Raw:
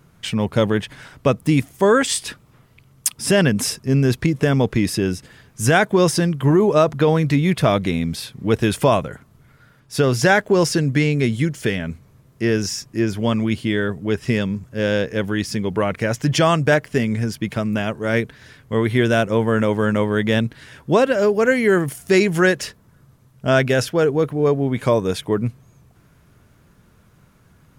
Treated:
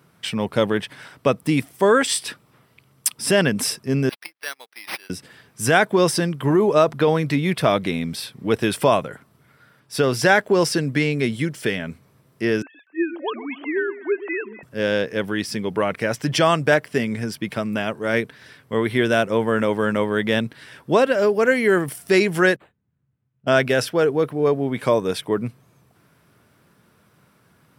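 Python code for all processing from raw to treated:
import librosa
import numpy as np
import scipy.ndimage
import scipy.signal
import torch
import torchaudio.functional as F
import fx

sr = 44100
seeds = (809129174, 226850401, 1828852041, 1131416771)

y = fx.chain(x, sr, fx.highpass(hz=1400.0, slope=12),
    fx.resample_bad(factor=6, down='none', up='hold'),
    fx.upward_expand(threshold_db=-49.0, expansion=2.5), at=(4.09, 5.1))
y = fx.chain(y, sr, fx.sine_speech(),
    fx.highpass(hz=360.0, slope=24),
    fx.echo_alternate(ms=124, hz=980.0, feedback_pct=61, wet_db=-12.0), at=(12.62, 14.63))
y = fx.chain(y, sr, fx.tone_stack(knobs='10-0-1'),
    fx.resample_linear(factor=8), at=(22.56, 23.47))
y = scipy.signal.sosfilt(scipy.signal.butter(2, 91.0, 'highpass', fs=sr, output='sos'), y)
y = fx.low_shelf(y, sr, hz=160.0, db=-9.5)
y = fx.notch(y, sr, hz=6700.0, q=6.5)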